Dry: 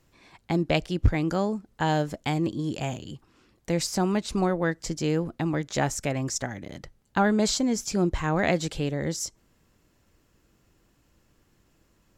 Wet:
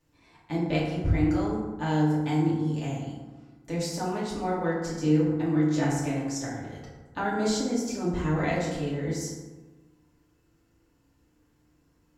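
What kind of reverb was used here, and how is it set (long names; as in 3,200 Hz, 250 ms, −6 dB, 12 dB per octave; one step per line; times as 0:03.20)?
feedback delay network reverb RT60 1.3 s, low-frequency decay 1.2×, high-frequency decay 0.45×, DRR −8 dB
level −12 dB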